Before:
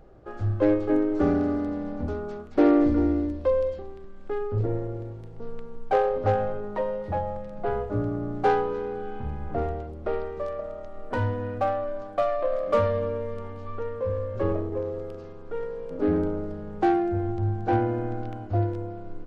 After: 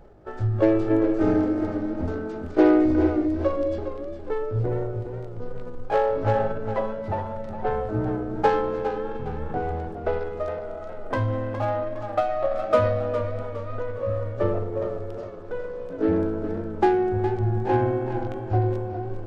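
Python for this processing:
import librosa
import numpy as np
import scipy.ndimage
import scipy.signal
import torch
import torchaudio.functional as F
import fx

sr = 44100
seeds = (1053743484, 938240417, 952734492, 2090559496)

y = fx.pitch_heads(x, sr, semitones=1.0)
y = fx.transient(y, sr, attack_db=3, sustain_db=7)
y = fx.echo_warbled(y, sr, ms=411, feedback_pct=41, rate_hz=2.8, cents=75, wet_db=-10.0)
y = y * 10.0 ** (1.0 / 20.0)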